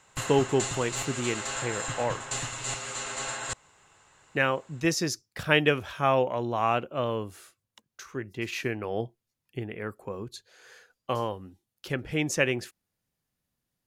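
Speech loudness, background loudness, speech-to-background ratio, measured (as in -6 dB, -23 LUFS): -29.5 LUFS, -33.0 LUFS, 3.5 dB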